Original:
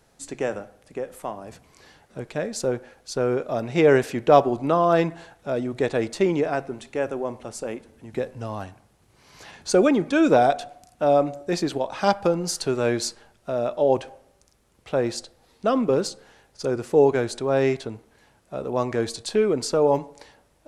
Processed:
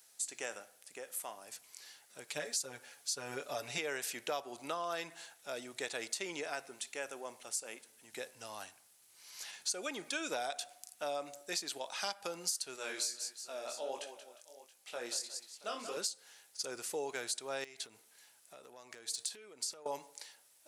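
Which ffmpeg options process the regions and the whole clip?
-filter_complex "[0:a]asettb=1/sr,asplit=3[a][b][c];[a]atrim=end=2.284[d];[b]atrim=start=2.28:end=3.78,asetpts=PTS-STARTPTS,afade=t=in:d=0.004:c=qsin,afade=t=out:st=1.496:d=0.004:c=qsin,highpass=53,lowshelf=f=110:g=10,aecho=1:1:7:0.97,atrim=end_sample=66150[e];[c]atrim=start=3.776[f];[d][e]acrossfade=d=0.004:c1=hsin:c2=qsin[g];[g][f]acrossfade=d=0.004:c1=qsin:c2=hsin,asettb=1/sr,asplit=3[h][i][j];[h]atrim=end=12.764[k];[i]atrim=start=12.76:end=15.97,asetpts=PTS-STARTPTS,afade=t=in:d=0.004:c=qsin,afade=t=out:st=3.206:d=0.004:c=qsin,equalizer=f=120:t=o:w=1:g=-10.5,aecho=1:1:58|181|357|677:0.188|0.299|0.112|0.119,atrim=end_sample=141561,flanger=delay=18:depth=7.6:speed=1.5[l];[j]atrim=start=15.966[m];[k][l]acrossfade=d=0.004:c1=hsin:c2=qsin[n];[n][m]acrossfade=d=0.004:c1=qsin:c2=hsin,asettb=1/sr,asplit=3[o][p][q];[o]atrim=end=17.644[r];[p]atrim=start=17.64:end=19.86,asetpts=PTS-STARTPTS,afade=t=in:d=0.004:c=qsin,afade=t=out:st=2.216:d=0.004:c=qsin,acompressor=threshold=-34dB:ratio=8:attack=3.2:release=140:knee=1:detection=peak,volume=27.5dB,asoftclip=hard,volume=-27.5dB[s];[q]atrim=start=19.856[t];[r][s]acrossfade=d=0.004:c1=hsin:c2=qsin[u];[u][t]acrossfade=d=0.004:c1=qsin:c2=hsin,aderivative,bandreject=f=1.1k:w=25,acompressor=threshold=-40dB:ratio=5,volume=5.5dB"

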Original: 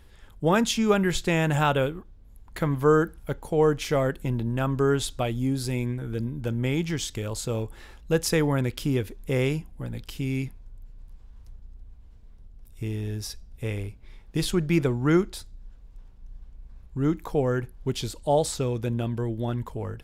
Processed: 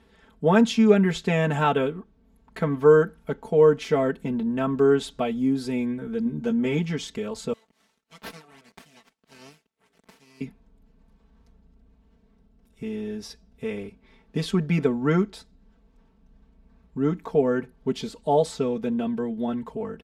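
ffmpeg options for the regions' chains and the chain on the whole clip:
-filter_complex "[0:a]asettb=1/sr,asplit=3[a][b][c];[a]atrim=end=6.244[d];[b]atrim=start=6.24:end=6.79,asetpts=PTS-STARTPTS,afade=t=in:d=0.004:c=qsin,afade=t=out:st=0.546:d=0.004:c=qsin,equalizer=f=6.4k:t=o:w=0.29:g=6,asplit=2[e][f];[f]adelay=13,volume=-5.5dB[g];[e][g]amix=inputs=2:normalize=0,atrim=end_sample=24255[h];[c]atrim=start=6.786[i];[d][h]acrossfade=d=0.004:c1=hsin:c2=qsin[j];[j][i]acrossfade=d=0.004:c1=qsin:c2=hsin,asettb=1/sr,asplit=3[k][l][m];[k]atrim=end=7.534[n];[l]atrim=start=7.53:end=10.41,asetpts=PTS-STARTPTS,afade=t=in:d=0.004:c=qsin,afade=t=out:st=2.876:d=0.004:c=qsin,bandpass=f=7.9k:t=q:w=0.94,aeval=exprs='abs(val(0))':c=same[o];[m]atrim=start=10.406[p];[n][o]acrossfade=d=0.004:c1=hsin:c2=qsin[q];[q][p]acrossfade=d=0.004:c1=qsin:c2=hsin,highpass=220,aemphasis=mode=reproduction:type=bsi,aecho=1:1:4.5:0.9,volume=-1.5dB"

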